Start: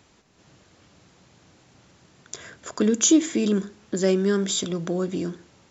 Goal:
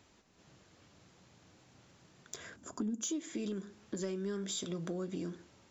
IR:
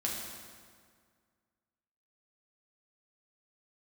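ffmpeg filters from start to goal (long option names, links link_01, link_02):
-filter_complex "[0:a]asettb=1/sr,asplit=3[link_01][link_02][link_03];[link_01]atrim=end=2.564[link_04];[link_02]atrim=start=2.56:end=3.03,asetpts=PTS-STARTPTS,afade=type=in:duration=0.004:curve=qsin,afade=type=out:start_time=0.466:duration=0.004:curve=qsin,equalizer=frequency=250:width_type=o:width=1:gain=8,equalizer=frequency=500:width_type=o:width=1:gain=-7,equalizer=frequency=2000:width_type=o:width=1:gain=-11,equalizer=frequency=4000:width_type=o:width=1:gain=-9[link_05];[link_03]atrim=start=3.026[link_06];[link_04][link_05]acrossfade=duration=0.004:curve1=hsin:curve2=qsin[link_07];[link_07][link_06]acrossfade=duration=0.004:curve1=qsin:curve2=hsin,acompressor=threshold=-28dB:ratio=5,asoftclip=type=tanh:threshold=-18dB,flanger=delay=3.1:depth=6.7:regen=-75:speed=0.36:shape=sinusoidal,volume=-2.5dB"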